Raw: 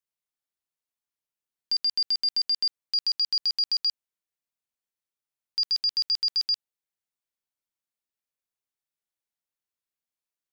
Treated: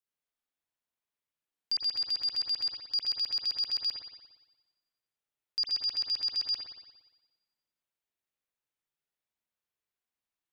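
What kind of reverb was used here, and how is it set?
spring reverb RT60 1.1 s, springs 58 ms, chirp 35 ms, DRR −4.5 dB
level −4.5 dB

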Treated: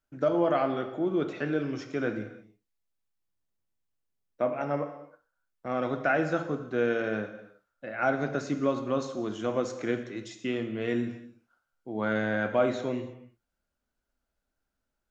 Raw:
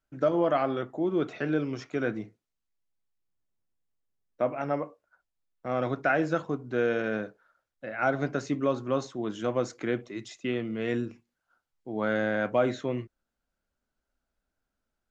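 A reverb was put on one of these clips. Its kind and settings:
reverb whose tail is shaped and stops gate 350 ms falling, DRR 7 dB
level −1 dB

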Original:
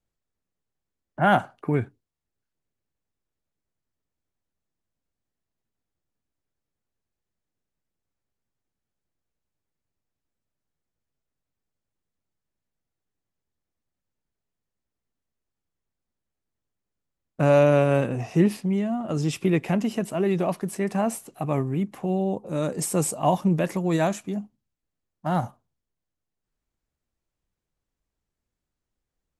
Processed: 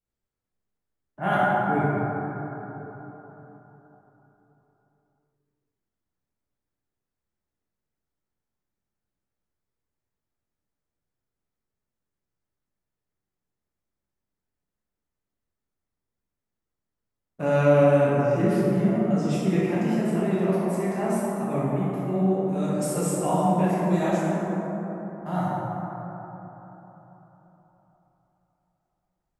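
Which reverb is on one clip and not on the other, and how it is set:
dense smooth reverb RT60 4 s, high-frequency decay 0.3×, DRR −9.5 dB
level −10 dB

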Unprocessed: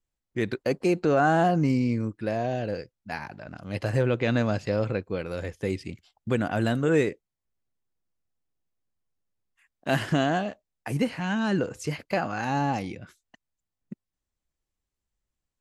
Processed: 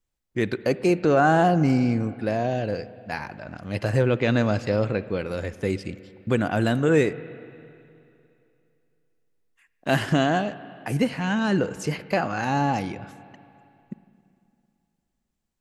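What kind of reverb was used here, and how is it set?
spring reverb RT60 2.7 s, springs 38/51/56 ms, chirp 55 ms, DRR 15 dB
level +3 dB

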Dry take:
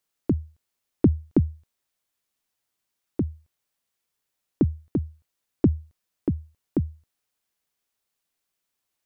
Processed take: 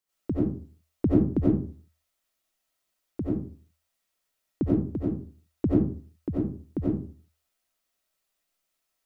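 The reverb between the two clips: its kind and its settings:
comb and all-pass reverb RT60 0.41 s, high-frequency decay 0.6×, pre-delay 50 ms, DRR −9 dB
level −7 dB

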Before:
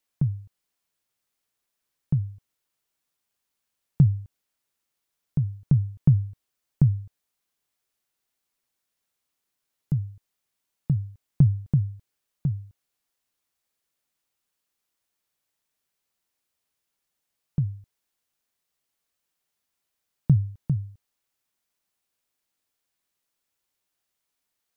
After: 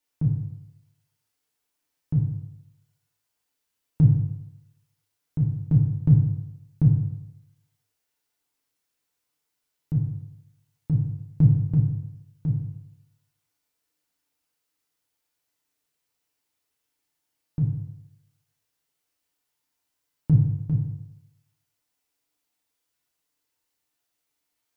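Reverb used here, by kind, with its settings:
feedback delay network reverb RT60 0.86 s, low-frequency decay 0.95×, high-frequency decay 0.9×, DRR −4 dB
level −4 dB

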